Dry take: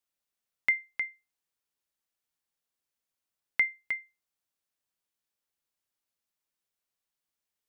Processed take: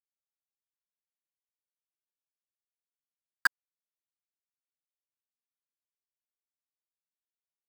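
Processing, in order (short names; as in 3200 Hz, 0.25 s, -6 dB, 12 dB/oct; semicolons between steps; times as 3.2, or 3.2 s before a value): nonlinear frequency compression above 1100 Hz 1.5:1; Doppler pass-by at 2.73, 22 m/s, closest 12 m; HPF 67 Hz 24 dB/oct; high shelf 3000 Hz +9 dB; compressor 2:1, threshold -40 dBFS, peak gain reduction 8 dB; bit-crush 5-bit; band shelf 1200 Hz +12 dB 1.3 oct; gain +2 dB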